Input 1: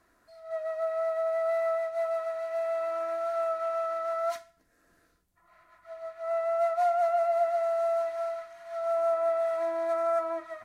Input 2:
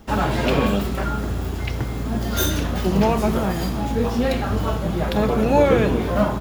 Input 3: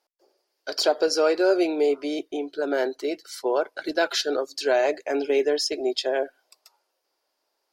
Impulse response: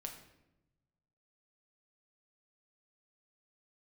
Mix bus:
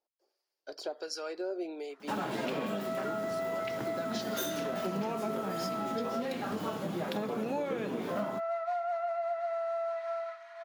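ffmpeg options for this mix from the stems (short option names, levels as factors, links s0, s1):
-filter_complex "[0:a]acrossover=split=570 5200:gain=0.0631 1 0.158[s0][s1][s2];[s0][s1][s2]amix=inputs=3:normalize=0,adelay=1900,volume=1.12[s3];[1:a]highpass=f=170:w=0.5412,highpass=f=170:w=1.3066,adelay=2000,volume=0.473[s4];[2:a]acompressor=threshold=0.0501:ratio=1.5,acrossover=split=910[s5][s6];[s5]aeval=exprs='val(0)*(1-0.7/2+0.7/2*cos(2*PI*1.3*n/s))':c=same[s7];[s6]aeval=exprs='val(0)*(1-0.7/2-0.7/2*cos(2*PI*1.3*n/s))':c=same[s8];[s7][s8]amix=inputs=2:normalize=0,volume=0.355[s9];[s3][s4][s9]amix=inputs=3:normalize=0,acompressor=threshold=0.0282:ratio=6"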